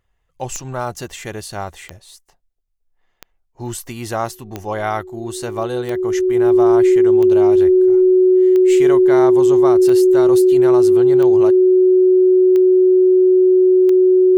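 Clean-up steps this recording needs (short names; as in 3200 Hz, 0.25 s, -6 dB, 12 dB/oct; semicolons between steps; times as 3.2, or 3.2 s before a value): de-click; notch 370 Hz, Q 30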